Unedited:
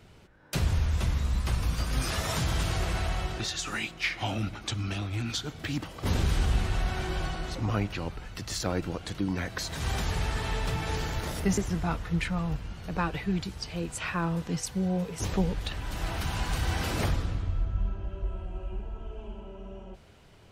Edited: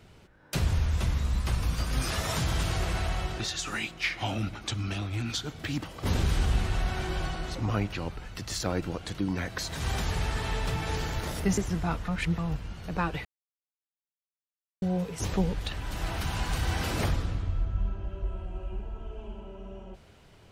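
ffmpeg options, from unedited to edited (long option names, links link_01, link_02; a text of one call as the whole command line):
ffmpeg -i in.wav -filter_complex "[0:a]asplit=5[link_01][link_02][link_03][link_04][link_05];[link_01]atrim=end=12.082[link_06];[link_02]atrim=start=12.078:end=12.382,asetpts=PTS-STARTPTS,areverse[link_07];[link_03]atrim=start=12.378:end=13.25,asetpts=PTS-STARTPTS,afade=type=out:start_time=0.868:duration=0.004:curve=hsin[link_08];[link_04]atrim=start=13.25:end=14.82,asetpts=PTS-STARTPTS,volume=0[link_09];[link_05]atrim=start=14.82,asetpts=PTS-STARTPTS,afade=type=in:duration=0.004:curve=hsin[link_10];[link_06][link_07]acrossfade=duration=0.004:curve1=hsin:curve2=hsin[link_11];[link_08][link_09][link_10]concat=n=3:v=0:a=1[link_12];[link_11][link_12]acrossfade=duration=0.004:curve1=hsin:curve2=hsin" out.wav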